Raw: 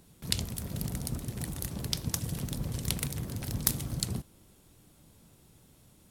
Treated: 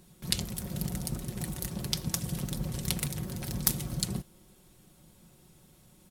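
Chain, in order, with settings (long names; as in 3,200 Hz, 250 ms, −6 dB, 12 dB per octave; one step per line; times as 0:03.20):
comb filter 5.5 ms, depth 50%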